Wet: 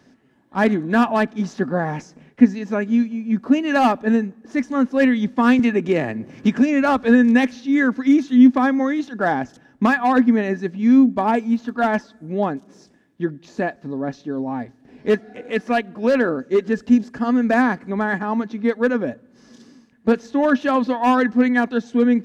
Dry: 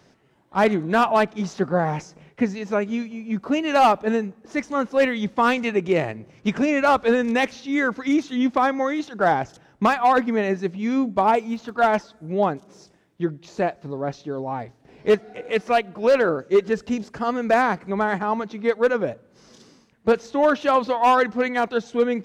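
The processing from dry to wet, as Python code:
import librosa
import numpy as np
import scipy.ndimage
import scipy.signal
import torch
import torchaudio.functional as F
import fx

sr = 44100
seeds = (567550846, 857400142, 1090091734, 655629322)

y = fx.small_body(x, sr, hz=(250.0, 1700.0), ring_ms=65, db=14)
y = fx.band_squash(y, sr, depth_pct=70, at=(5.59, 7.05))
y = y * librosa.db_to_amplitude(-2.0)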